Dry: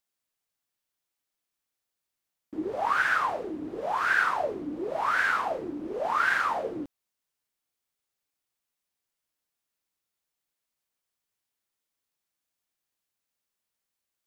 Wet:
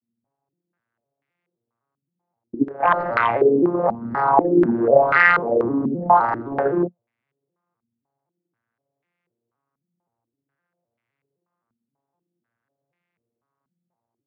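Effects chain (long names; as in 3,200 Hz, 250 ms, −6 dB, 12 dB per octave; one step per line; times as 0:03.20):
vocoder with an arpeggio as carrier minor triad, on A#2, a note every 258 ms
0:02.54–0:03.00: noise gate −27 dBFS, range −16 dB
sine wavefolder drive 7 dB, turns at −12 dBFS
low-pass on a step sequencer 4.1 Hz 230–2,200 Hz
level −1 dB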